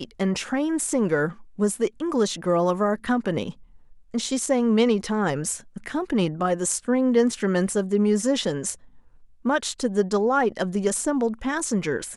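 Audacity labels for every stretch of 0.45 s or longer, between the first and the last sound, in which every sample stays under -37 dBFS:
3.530000	4.140000	silence
8.750000	9.450000	silence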